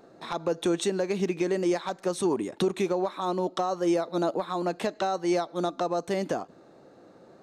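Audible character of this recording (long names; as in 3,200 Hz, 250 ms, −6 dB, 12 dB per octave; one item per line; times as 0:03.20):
background noise floor −54 dBFS
spectral slope −5.0 dB per octave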